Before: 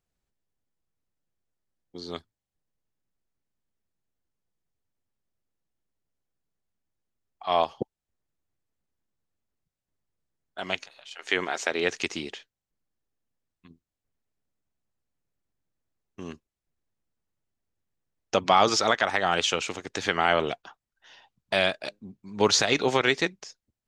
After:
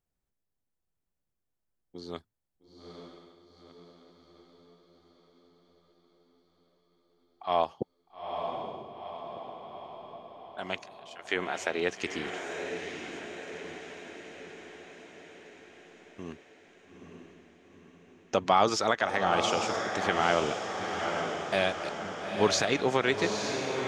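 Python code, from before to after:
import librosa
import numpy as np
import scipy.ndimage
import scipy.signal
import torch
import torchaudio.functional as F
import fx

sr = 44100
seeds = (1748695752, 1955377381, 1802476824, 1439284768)

p1 = fx.peak_eq(x, sr, hz=4100.0, db=-5.0, octaves=2.2)
p2 = p1 + fx.echo_diffused(p1, sr, ms=892, feedback_pct=59, wet_db=-5.0, dry=0)
y = F.gain(torch.from_numpy(p2), -2.5).numpy()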